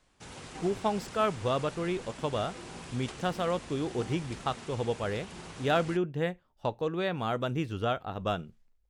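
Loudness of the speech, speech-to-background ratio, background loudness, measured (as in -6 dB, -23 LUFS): -32.5 LUFS, 12.5 dB, -45.0 LUFS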